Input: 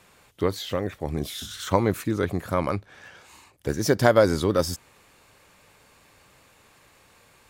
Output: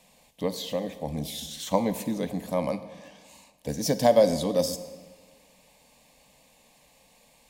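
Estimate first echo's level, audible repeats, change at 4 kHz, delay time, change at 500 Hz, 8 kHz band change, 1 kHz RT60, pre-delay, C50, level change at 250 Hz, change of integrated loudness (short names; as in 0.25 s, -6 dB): none, none, -1.0 dB, none, -1.5 dB, 0.0 dB, 1.6 s, 10 ms, 12.5 dB, -2.5 dB, -2.5 dB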